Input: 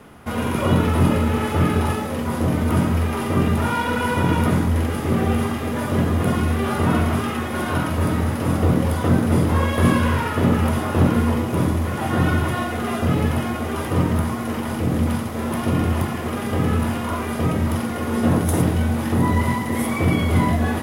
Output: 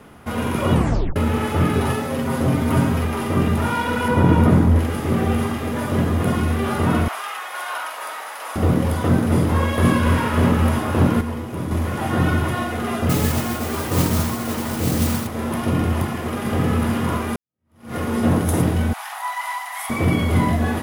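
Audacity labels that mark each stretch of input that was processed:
0.730000	0.730000	tape stop 0.43 s
1.730000	3.050000	comb 7.5 ms
4.080000	4.790000	tilt shelf lows +5 dB, about 1400 Hz
7.080000	8.560000	HPF 720 Hz 24 dB/oct
9.790000	10.240000	echo throw 0.27 s, feedback 65%, level -6 dB
11.210000	11.710000	gain -7 dB
13.090000	15.270000	modulation noise under the signal 10 dB
16.010000	16.730000	echo throw 0.44 s, feedback 70%, level -5.5 dB
17.360000	17.950000	fade in exponential
18.930000	19.900000	steep high-pass 700 Hz 72 dB/oct

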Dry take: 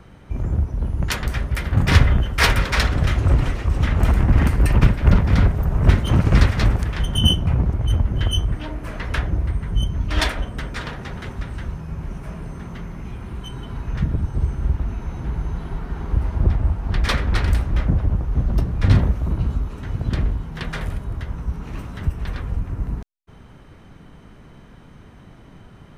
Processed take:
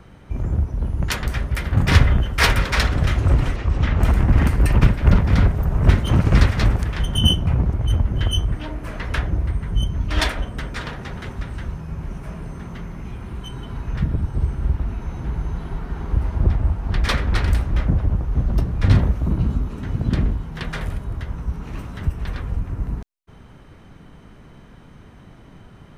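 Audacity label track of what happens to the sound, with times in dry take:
3.560000	4.010000	LPF 5800 Hz
13.960000	15.010000	notch 6400 Hz, Q 10
19.210000	20.340000	bell 220 Hz +6 dB 1.4 oct

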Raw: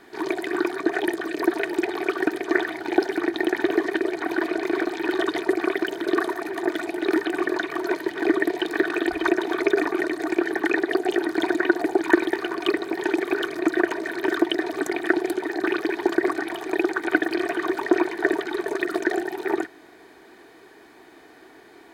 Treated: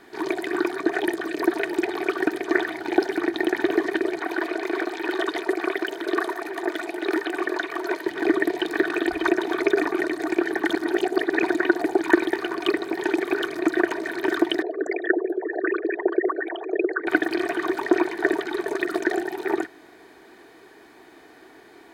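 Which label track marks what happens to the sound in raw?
4.190000	8.060000	tone controls bass -12 dB, treble -1 dB
10.700000	11.430000	reverse
14.620000	17.070000	formant sharpening exponent 3

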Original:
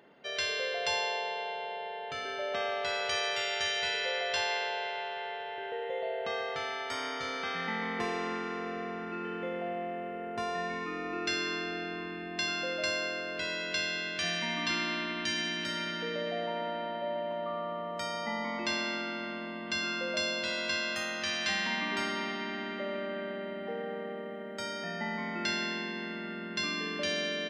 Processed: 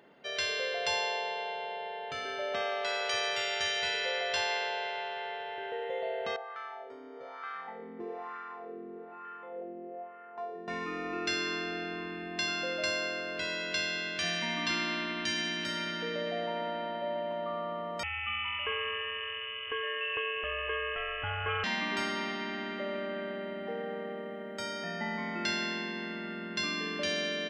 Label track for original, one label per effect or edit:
2.630000	3.140000	HPF 260 Hz
6.360000	10.680000	wah 1.1 Hz 320–1300 Hz, Q 2.9
18.030000	21.640000	inverted band carrier 3200 Hz

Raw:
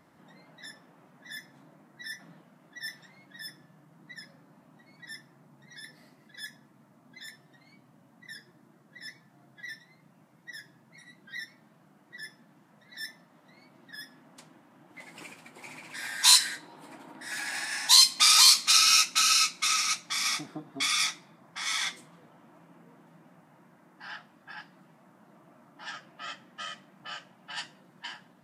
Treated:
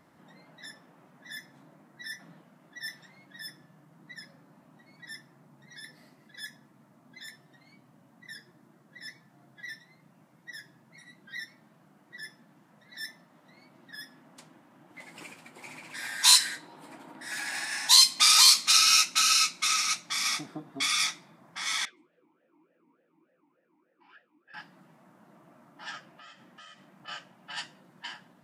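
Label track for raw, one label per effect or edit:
21.850000	24.540000	vowel sweep e-u 3.4 Hz
26.090000	27.080000	compressor 4:1, threshold -49 dBFS

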